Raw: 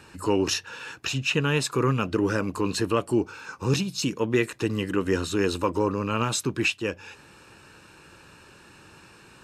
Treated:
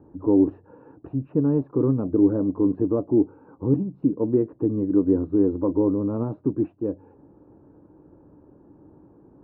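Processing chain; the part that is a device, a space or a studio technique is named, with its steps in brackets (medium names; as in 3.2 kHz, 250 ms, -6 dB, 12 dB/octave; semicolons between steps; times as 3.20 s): under water (low-pass 750 Hz 24 dB/octave; peaking EQ 290 Hz +11 dB 0.36 oct)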